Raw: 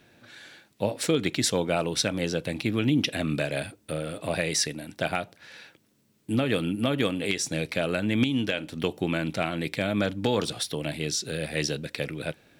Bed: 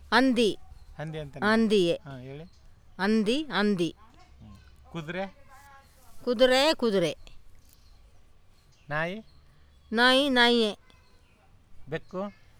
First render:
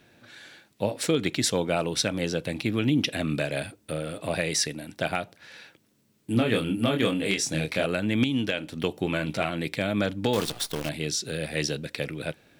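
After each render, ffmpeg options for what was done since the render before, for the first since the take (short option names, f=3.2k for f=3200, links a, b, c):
-filter_complex "[0:a]asettb=1/sr,asplit=3[a][b][c];[a]atrim=end=6.334[d];[b]atrim=start=6.33:end=7.86,asetpts=PTS-STARTPTS,afade=t=in:d=0.004:c=qsin,afade=t=out:st=1.526:d=0.004:c=qsin,asplit=2[e][f];[f]adelay=26,volume=-3.5dB[g];[e][g]amix=inputs=2:normalize=0,atrim=end_sample=67473[h];[c]atrim=start=7.856[i];[d][h]acrossfade=d=0.004:c1=hsin:c2=qsin[j];[j][i]acrossfade=d=0.004:c1=qsin:c2=hsin,asettb=1/sr,asplit=3[k][l][m];[k]atrim=end=9.044[n];[l]atrim=start=9.04:end=9.5,asetpts=PTS-STARTPTS,afade=t=in:d=0.004:c=qsin,afade=t=out:st=0.456:d=0.004:c=qsin,asplit=2[o][p];[p]adelay=14,volume=-7dB[q];[o][q]amix=inputs=2:normalize=0,atrim=end_sample=20286[r];[m]atrim=start=9.496[s];[n][r]acrossfade=d=0.004:c1=hsin:c2=qsin[t];[t][s]acrossfade=d=0.004:c1=qsin:c2=hsin,asettb=1/sr,asplit=3[u][v][w];[u]atrim=end=10.334[x];[v]atrim=start=10.33:end=10.89,asetpts=PTS-STARTPTS,afade=t=in:d=0.004:c=qsin,afade=t=out:st=0.556:d=0.004:c=qsin,acrusher=bits=6:dc=4:mix=0:aa=0.000001[y];[w]atrim=start=10.886[z];[x][y]acrossfade=d=0.004:c1=hsin:c2=qsin[aa];[aa][z]acrossfade=d=0.004:c1=qsin:c2=hsin"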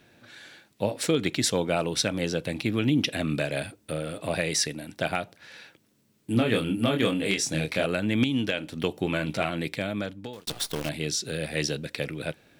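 -filter_complex "[0:a]asplit=2[a][b];[a]atrim=end=10.47,asetpts=PTS-STARTPTS,afade=t=out:st=9.6:d=0.87[c];[b]atrim=start=10.47,asetpts=PTS-STARTPTS,afade=t=in:d=0.004:c=hsin[d];[c][d]concat=n=2:v=0:a=1"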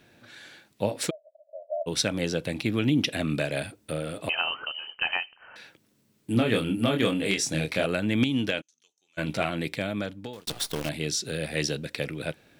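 -filter_complex "[0:a]asplit=3[a][b][c];[a]afade=t=out:st=1.09:d=0.02[d];[b]asuperpass=centerf=620:order=8:qfactor=5.7,afade=t=in:st=1.09:d=0.02,afade=t=out:st=1.86:d=0.02[e];[c]afade=t=in:st=1.86:d=0.02[f];[d][e][f]amix=inputs=3:normalize=0,asettb=1/sr,asplit=3[g][h][i];[g]atrim=end=4.294[j];[h]atrim=start=4.29:end=5.56,asetpts=PTS-STARTPTS,afade=t=in:d=0.004:c=qsin,afade=t=out:st=1.266:d=0.004:c=qsin,lowpass=f=2.7k:t=q:w=0.5098,lowpass=f=2.7k:t=q:w=0.6013,lowpass=f=2.7k:t=q:w=0.9,lowpass=f=2.7k:t=q:w=2.563,afreqshift=-3200[k];[i]atrim=start=5.556[l];[j][k]acrossfade=d=0.004:c1=hsin:c2=qsin[m];[m][l]acrossfade=d=0.004:c1=qsin:c2=hsin,asplit=3[n][o][p];[n]afade=t=out:st=8.6:d=0.02[q];[o]bandpass=f=6.3k:t=q:w=18,afade=t=in:st=8.6:d=0.02,afade=t=out:st=9.17:d=0.02[r];[p]afade=t=in:st=9.17:d=0.02[s];[q][r][s]amix=inputs=3:normalize=0"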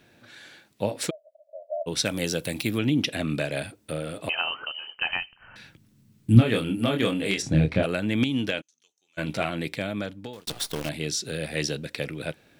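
-filter_complex "[0:a]asettb=1/sr,asplit=3[a][b][c];[a]atrim=end=2.054[d];[b]atrim=start=2.05:end=2.78,asetpts=PTS-STARTPTS,afade=t=in:d=0.004:c=qsin,afade=t=out:st=0.726:d=0.004:c=qsin,aemphasis=mode=production:type=50fm[e];[c]atrim=start=2.776[f];[d][e]acrossfade=d=0.004:c1=hsin:c2=qsin[g];[g][f]acrossfade=d=0.004:c1=qsin:c2=hsin,asplit=3[h][i][j];[h]afade=t=out:st=5.1:d=0.02[k];[i]asubboost=boost=8:cutoff=170,afade=t=in:st=5.1:d=0.02,afade=t=out:st=6.4:d=0.02[l];[j]afade=t=in:st=6.4:d=0.02[m];[k][l][m]amix=inputs=3:normalize=0,asplit=3[n][o][p];[n]afade=t=out:st=7.41:d=0.02[q];[o]aemphasis=mode=reproduction:type=riaa,afade=t=in:st=7.41:d=0.02,afade=t=out:st=7.82:d=0.02[r];[p]afade=t=in:st=7.82:d=0.02[s];[q][r][s]amix=inputs=3:normalize=0"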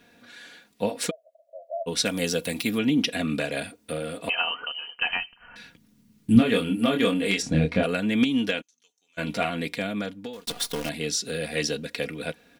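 -af "lowshelf=f=140:g=-3,aecho=1:1:4.2:0.64"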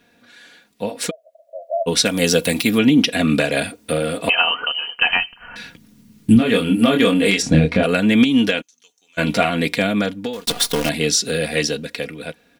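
-af "alimiter=limit=-14.5dB:level=0:latency=1:release=244,dynaudnorm=f=190:g=13:m=11.5dB"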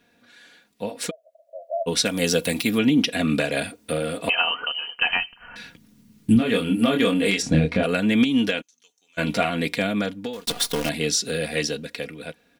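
-af "volume=-5dB"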